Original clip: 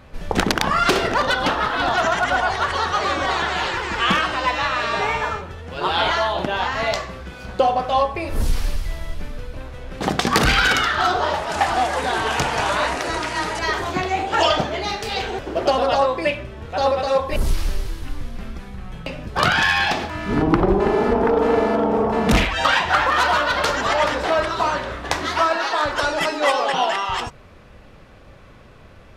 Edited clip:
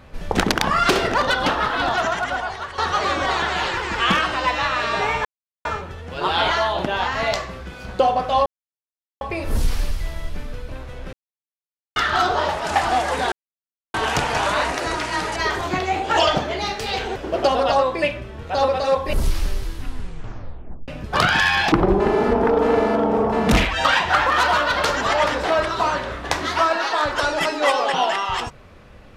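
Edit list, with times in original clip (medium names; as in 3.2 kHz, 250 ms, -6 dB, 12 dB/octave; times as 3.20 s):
1.73–2.78 s: fade out, to -12.5 dB
5.25 s: insert silence 0.40 s
8.06 s: insert silence 0.75 s
9.98–10.81 s: mute
12.17 s: insert silence 0.62 s
18.05 s: tape stop 1.06 s
19.95–20.52 s: delete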